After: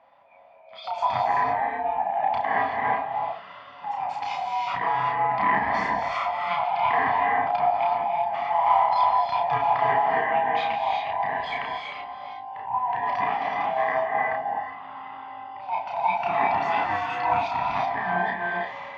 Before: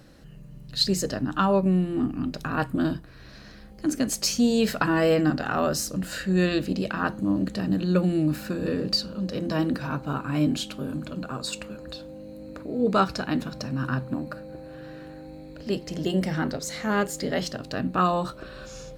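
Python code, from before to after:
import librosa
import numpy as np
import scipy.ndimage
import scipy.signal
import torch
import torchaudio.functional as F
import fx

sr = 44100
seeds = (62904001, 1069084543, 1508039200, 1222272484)

y = fx.band_swap(x, sr, width_hz=500)
y = fx.noise_reduce_blind(y, sr, reduce_db=10)
y = fx.over_compress(y, sr, threshold_db=-26.0, ratio=-0.5)
y = fx.transient(y, sr, attack_db=-11, sustain_db=1)
y = fx.cabinet(y, sr, low_hz=170.0, low_slope=12, high_hz=2900.0, hz=(330.0, 560.0, 1000.0, 2400.0), db=(-6, -4, 9, 5))
y = fx.doubler(y, sr, ms=32.0, db=-2.5)
y = fx.rev_gated(y, sr, seeds[0], gate_ms=400, shape='rising', drr_db=0.5)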